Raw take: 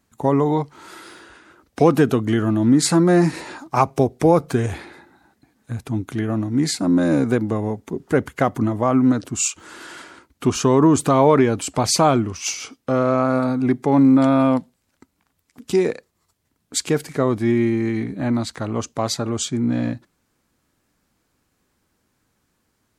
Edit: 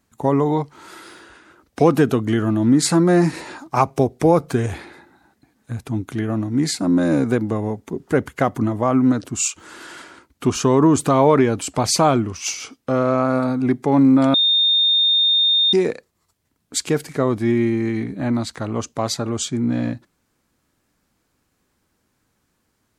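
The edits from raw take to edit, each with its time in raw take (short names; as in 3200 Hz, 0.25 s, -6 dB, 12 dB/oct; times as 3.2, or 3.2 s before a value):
14.34–15.73 bleep 3650 Hz -13 dBFS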